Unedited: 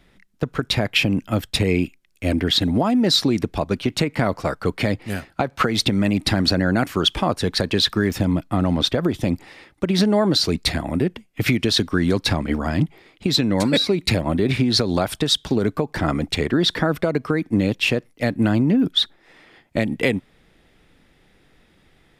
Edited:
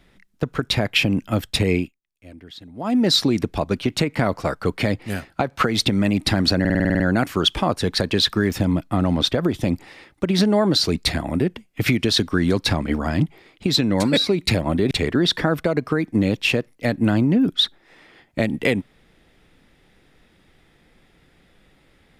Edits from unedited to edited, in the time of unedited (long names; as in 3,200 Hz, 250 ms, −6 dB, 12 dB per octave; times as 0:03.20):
0:01.75–0:02.95: duck −22 dB, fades 0.18 s
0:06.60: stutter 0.05 s, 9 plays
0:14.51–0:16.29: remove